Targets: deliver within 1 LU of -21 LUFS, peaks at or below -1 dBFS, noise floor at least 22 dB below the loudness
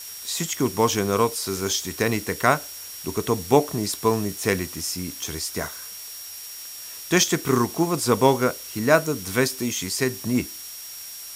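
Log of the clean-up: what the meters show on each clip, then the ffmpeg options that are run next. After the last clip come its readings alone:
steady tone 5.6 kHz; tone level -40 dBFS; noise floor -38 dBFS; noise floor target -46 dBFS; loudness -23.5 LUFS; peak level -1.5 dBFS; loudness target -21.0 LUFS
-> -af "bandreject=f=5600:w=30"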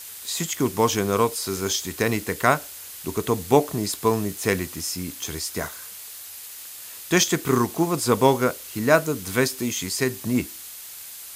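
steady tone not found; noise floor -40 dBFS; noise floor target -46 dBFS
-> -af "afftdn=nr=6:nf=-40"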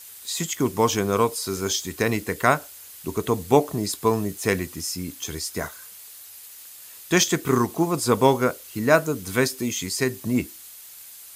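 noise floor -44 dBFS; noise floor target -46 dBFS
-> -af "afftdn=nr=6:nf=-44"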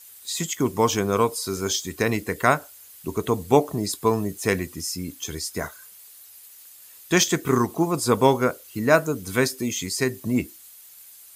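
noise floor -48 dBFS; loudness -23.5 LUFS; peak level -1.5 dBFS; loudness target -21.0 LUFS
-> -af "volume=1.33,alimiter=limit=0.891:level=0:latency=1"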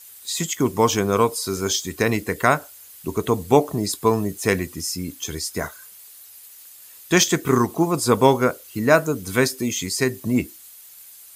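loudness -21.5 LUFS; peak level -1.0 dBFS; noise floor -45 dBFS

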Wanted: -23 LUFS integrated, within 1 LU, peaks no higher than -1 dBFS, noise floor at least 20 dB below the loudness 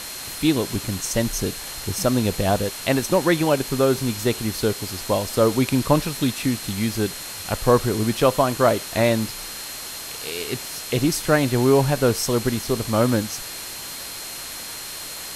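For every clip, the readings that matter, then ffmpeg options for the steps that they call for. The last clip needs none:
steady tone 4.2 kHz; tone level -39 dBFS; noise floor -34 dBFS; noise floor target -43 dBFS; loudness -22.5 LUFS; peak level -3.0 dBFS; loudness target -23.0 LUFS
-> -af "bandreject=f=4200:w=30"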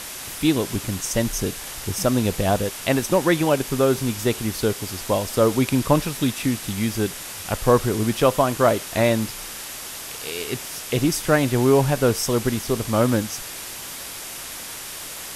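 steady tone not found; noise floor -35 dBFS; noise floor target -43 dBFS
-> -af "afftdn=nr=8:nf=-35"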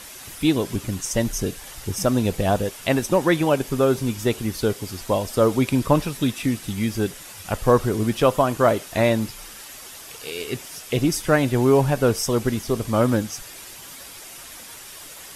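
noise floor -41 dBFS; noise floor target -42 dBFS
-> -af "afftdn=nr=6:nf=-41"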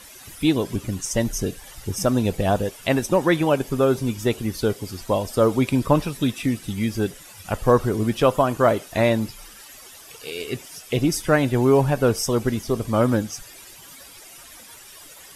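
noise floor -45 dBFS; loudness -22.0 LUFS; peak level -3.5 dBFS; loudness target -23.0 LUFS
-> -af "volume=0.891"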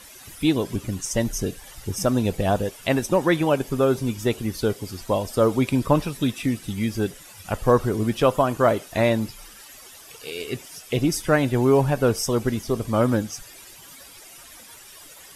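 loudness -23.0 LUFS; peak level -4.5 dBFS; noise floor -46 dBFS

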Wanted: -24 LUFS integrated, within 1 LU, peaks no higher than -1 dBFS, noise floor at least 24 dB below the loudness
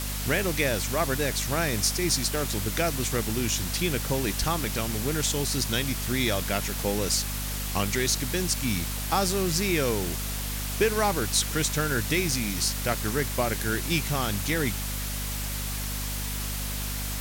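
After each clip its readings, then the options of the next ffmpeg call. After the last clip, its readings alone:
hum 50 Hz; highest harmonic 250 Hz; hum level -31 dBFS; noise floor -31 dBFS; noise floor target -51 dBFS; loudness -26.5 LUFS; peak level -11.0 dBFS; loudness target -24.0 LUFS
-> -af "bandreject=f=50:t=h:w=6,bandreject=f=100:t=h:w=6,bandreject=f=150:t=h:w=6,bandreject=f=200:t=h:w=6,bandreject=f=250:t=h:w=6"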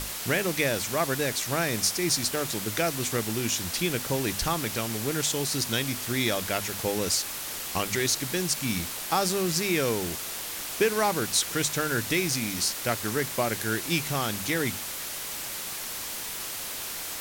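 hum not found; noise floor -35 dBFS; noise floor target -51 dBFS
-> -af "afftdn=nr=16:nf=-35"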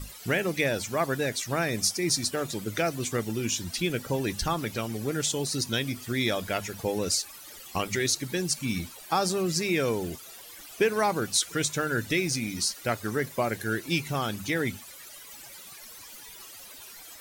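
noise floor -46 dBFS; noise floor target -53 dBFS
-> -af "afftdn=nr=7:nf=-46"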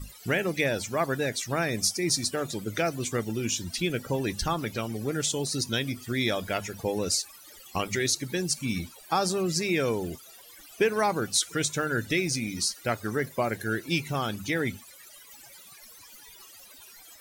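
noise floor -50 dBFS; noise floor target -53 dBFS
-> -af "afftdn=nr=6:nf=-50"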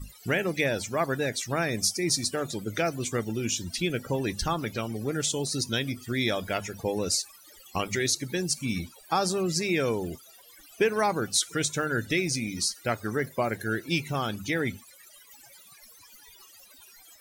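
noise floor -53 dBFS; loudness -28.5 LUFS; peak level -12.0 dBFS; loudness target -24.0 LUFS
-> -af "volume=1.68"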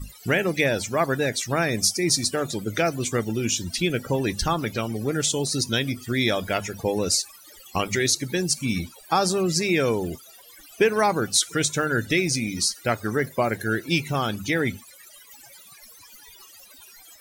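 loudness -24.0 LUFS; peak level -7.5 dBFS; noise floor -49 dBFS

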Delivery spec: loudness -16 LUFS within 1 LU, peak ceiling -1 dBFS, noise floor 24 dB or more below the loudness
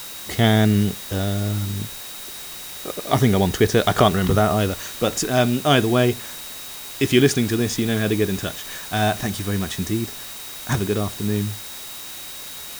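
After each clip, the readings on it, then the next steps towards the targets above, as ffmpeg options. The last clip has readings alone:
steady tone 3.8 kHz; tone level -41 dBFS; noise floor -35 dBFS; noise floor target -45 dBFS; loudness -21.0 LUFS; peak level -2.0 dBFS; loudness target -16.0 LUFS
-> -af "bandreject=f=3800:w=30"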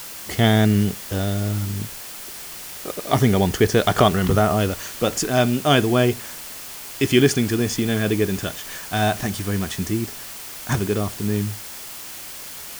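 steady tone not found; noise floor -36 dBFS; noise floor target -45 dBFS
-> -af "afftdn=nr=9:nf=-36"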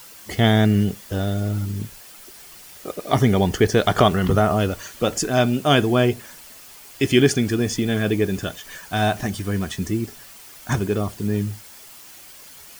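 noise floor -44 dBFS; noise floor target -45 dBFS
-> -af "afftdn=nr=6:nf=-44"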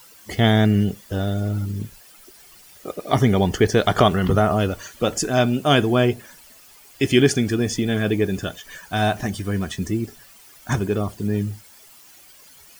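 noise floor -48 dBFS; loudness -21.0 LUFS; peak level -2.5 dBFS; loudness target -16.0 LUFS
-> -af "volume=1.78,alimiter=limit=0.891:level=0:latency=1"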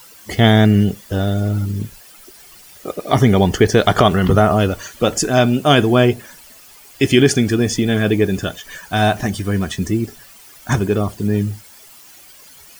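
loudness -16.5 LUFS; peak level -1.0 dBFS; noise floor -43 dBFS

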